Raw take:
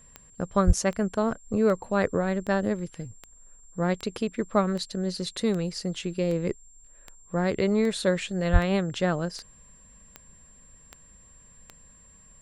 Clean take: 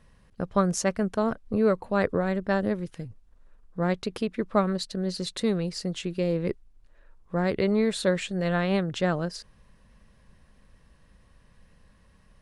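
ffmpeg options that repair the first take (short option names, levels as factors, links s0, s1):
-filter_complex "[0:a]adeclick=t=4,bandreject=f=7400:w=30,asplit=3[s0][s1][s2];[s0]afade=t=out:st=0.66:d=0.02[s3];[s1]highpass=f=140:w=0.5412,highpass=f=140:w=1.3066,afade=t=in:st=0.66:d=0.02,afade=t=out:st=0.78:d=0.02[s4];[s2]afade=t=in:st=0.78:d=0.02[s5];[s3][s4][s5]amix=inputs=3:normalize=0,asplit=3[s6][s7][s8];[s6]afade=t=out:st=8.52:d=0.02[s9];[s7]highpass=f=140:w=0.5412,highpass=f=140:w=1.3066,afade=t=in:st=8.52:d=0.02,afade=t=out:st=8.64:d=0.02[s10];[s8]afade=t=in:st=8.64:d=0.02[s11];[s9][s10][s11]amix=inputs=3:normalize=0"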